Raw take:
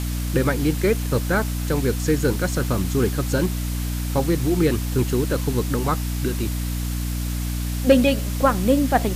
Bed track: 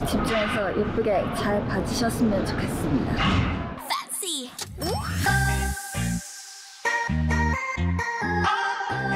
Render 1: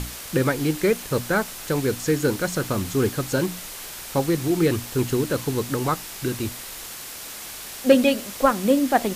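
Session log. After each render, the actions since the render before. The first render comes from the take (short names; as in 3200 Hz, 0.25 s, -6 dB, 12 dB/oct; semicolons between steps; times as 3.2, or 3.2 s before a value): notches 60/120/180/240/300 Hz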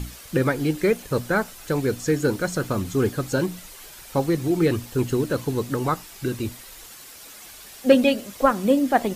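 denoiser 9 dB, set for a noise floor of -37 dBFS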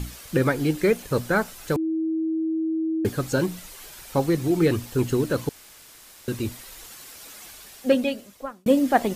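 1.76–3.05 bleep 321 Hz -22 dBFS; 5.49–6.28 room tone; 7.43–8.66 fade out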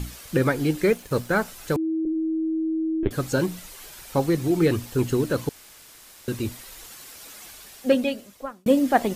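0.9–1.42 G.711 law mismatch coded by A; 2.05–3.11 LPC vocoder at 8 kHz pitch kept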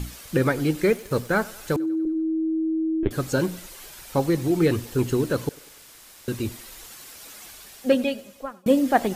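thinning echo 97 ms, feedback 55%, high-pass 210 Hz, level -21.5 dB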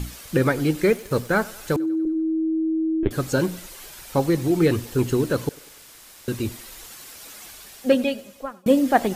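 gain +1.5 dB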